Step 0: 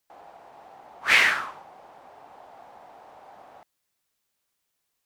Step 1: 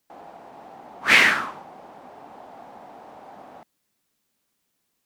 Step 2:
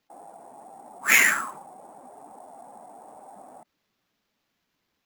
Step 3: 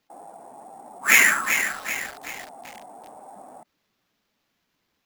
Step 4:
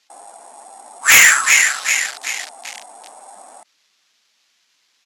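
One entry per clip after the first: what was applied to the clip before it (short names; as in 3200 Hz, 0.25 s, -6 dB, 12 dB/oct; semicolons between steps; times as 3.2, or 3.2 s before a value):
bell 230 Hz +10.5 dB 1.4 oct; gain +3 dB
spectral contrast raised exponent 1.5; sample-rate reducer 9100 Hz, jitter 0%; gain -2.5 dB
lo-fi delay 0.383 s, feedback 55%, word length 6-bit, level -7 dB; gain +2.5 dB
downsampling 32000 Hz; weighting filter ITU-R 468; sine folder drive 11 dB, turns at 7.5 dBFS; gain -10 dB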